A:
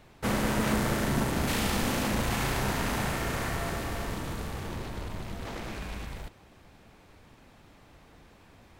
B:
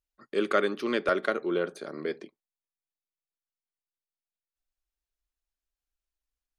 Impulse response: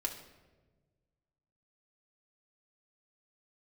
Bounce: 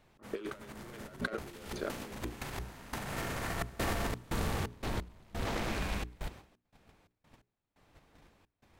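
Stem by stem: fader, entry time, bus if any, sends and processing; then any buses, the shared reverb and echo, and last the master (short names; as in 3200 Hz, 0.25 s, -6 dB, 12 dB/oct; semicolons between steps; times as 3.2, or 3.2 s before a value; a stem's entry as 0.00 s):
-1.5 dB, 0.00 s, no send, gate -52 dBFS, range -13 dB; step gate "x..xxxx.xx.xx." 87 bpm -24 dB
-11.0 dB, 0.00 s, send -11.5 dB, sample leveller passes 2; low-pass opened by the level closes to 650 Hz, open at -20.5 dBFS; low shelf 120 Hz -6.5 dB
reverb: on, RT60 1.3 s, pre-delay 3 ms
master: notches 60/120/180/240/300/360/420 Hz; negative-ratio compressor -36 dBFS, ratio -0.5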